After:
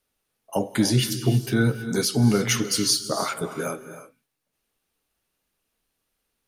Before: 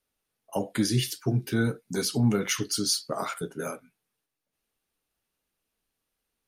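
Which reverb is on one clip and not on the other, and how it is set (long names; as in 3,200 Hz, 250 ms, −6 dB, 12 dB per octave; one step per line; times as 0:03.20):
reverb whose tail is shaped and stops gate 350 ms rising, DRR 10.5 dB
level +4.5 dB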